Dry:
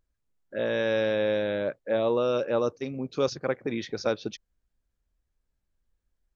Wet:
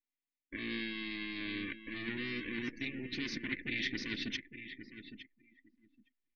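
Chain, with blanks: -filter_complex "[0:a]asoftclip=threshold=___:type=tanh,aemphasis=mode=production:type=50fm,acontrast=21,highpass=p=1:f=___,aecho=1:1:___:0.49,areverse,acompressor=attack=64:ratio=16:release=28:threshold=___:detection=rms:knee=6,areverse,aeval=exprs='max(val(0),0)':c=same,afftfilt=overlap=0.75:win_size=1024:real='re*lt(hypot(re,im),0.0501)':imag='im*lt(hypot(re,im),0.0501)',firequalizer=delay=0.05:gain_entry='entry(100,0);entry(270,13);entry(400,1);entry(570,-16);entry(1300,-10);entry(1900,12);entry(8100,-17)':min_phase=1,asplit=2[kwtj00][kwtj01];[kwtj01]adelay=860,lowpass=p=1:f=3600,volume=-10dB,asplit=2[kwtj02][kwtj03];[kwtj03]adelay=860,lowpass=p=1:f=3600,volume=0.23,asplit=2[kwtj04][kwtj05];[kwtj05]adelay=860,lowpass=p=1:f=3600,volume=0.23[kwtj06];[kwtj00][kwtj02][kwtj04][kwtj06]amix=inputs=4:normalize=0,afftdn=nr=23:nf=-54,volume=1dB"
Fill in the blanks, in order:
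-25.5dB, 570, 3.4, -38dB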